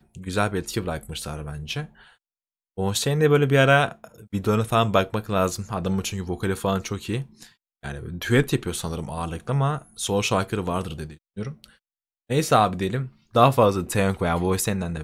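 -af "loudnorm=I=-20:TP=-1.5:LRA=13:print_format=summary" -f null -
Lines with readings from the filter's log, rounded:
Input Integrated:    -23.3 LUFS
Input True Peak:      -2.9 dBTP
Input LRA:             5.6 LU
Input Threshold:     -33.9 LUFS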